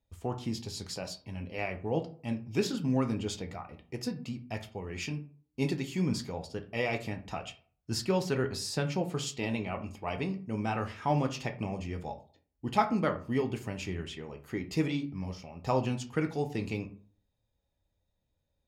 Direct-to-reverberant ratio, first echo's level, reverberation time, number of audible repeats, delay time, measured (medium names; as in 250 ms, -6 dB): 5.0 dB, no echo, 0.45 s, no echo, no echo